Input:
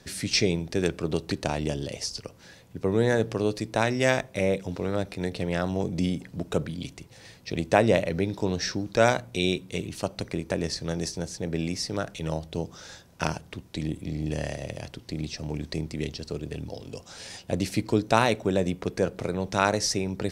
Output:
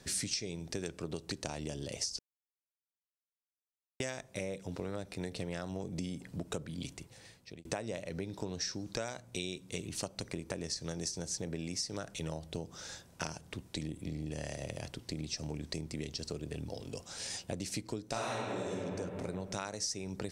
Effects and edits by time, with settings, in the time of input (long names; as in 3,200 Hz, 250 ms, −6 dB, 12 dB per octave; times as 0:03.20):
0:02.19–0:04.00: silence
0:06.70–0:07.65: fade out equal-power
0:18.08–0:18.75: thrown reverb, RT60 1.8 s, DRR −9.5 dB
whole clip: dynamic equaliser 6,100 Hz, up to +8 dB, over −48 dBFS, Q 1.2; downward compressor 12 to 1, threshold −31 dBFS; parametric band 8,600 Hz +5.5 dB 0.61 octaves; level −3.5 dB